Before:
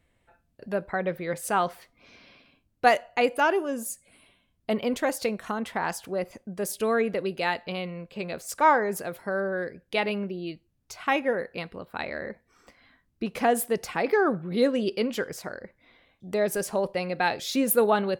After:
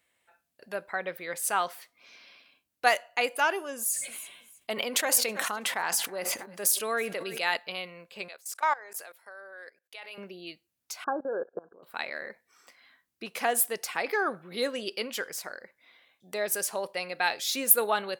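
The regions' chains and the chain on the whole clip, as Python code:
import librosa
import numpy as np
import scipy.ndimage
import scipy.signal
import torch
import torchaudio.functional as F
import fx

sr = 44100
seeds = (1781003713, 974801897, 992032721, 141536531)

y = fx.chain(x, sr, fx.echo_feedback(ms=323, feedback_pct=28, wet_db=-22),
    fx.sustainer(db_per_s=40.0), at=(3.76, 7.57))
y = fx.chain(y, sr, fx.highpass(hz=520.0, slope=12),
    fx.level_steps(step_db=21), at=(8.28, 10.18))
y = fx.chain(y, sr, fx.peak_eq(hz=390.0, db=14.5, octaves=1.6),
    fx.level_steps(step_db=23),
    fx.brickwall_lowpass(high_hz=1700.0), at=(11.04, 11.83))
y = fx.highpass(y, sr, hz=1300.0, slope=6)
y = fx.high_shelf(y, sr, hz=8200.0, db=7.0)
y = F.gain(torch.from_numpy(y), 1.5).numpy()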